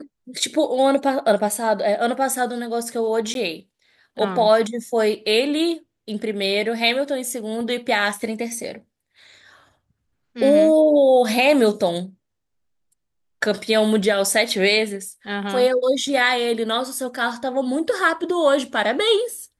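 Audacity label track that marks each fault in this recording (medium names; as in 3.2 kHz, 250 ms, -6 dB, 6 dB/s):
3.340000	3.350000	dropout 12 ms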